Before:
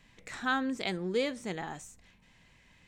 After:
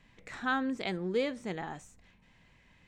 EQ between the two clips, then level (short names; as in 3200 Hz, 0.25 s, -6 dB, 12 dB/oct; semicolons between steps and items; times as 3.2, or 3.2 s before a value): high shelf 4400 Hz -9.5 dB; 0.0 dB